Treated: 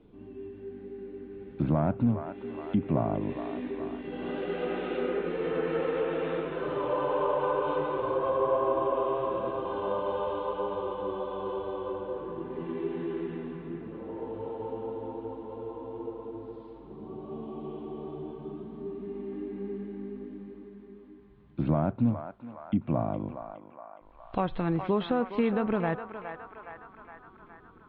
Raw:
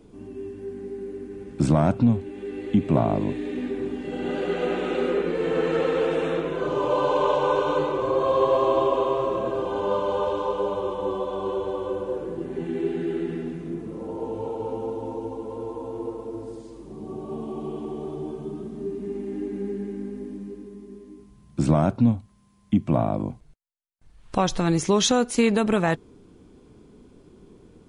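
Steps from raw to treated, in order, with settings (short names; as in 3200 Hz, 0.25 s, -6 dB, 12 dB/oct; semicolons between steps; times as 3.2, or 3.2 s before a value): treble ducked by the level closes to 1900 Hz, closed at -17 dBFS; steep low-pass 3900 Hz 48 dB/oct; narrowing echo 0.415 s, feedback 71%, band-pass 1300 Hz, level -6.5 dB; gain -6.5 dB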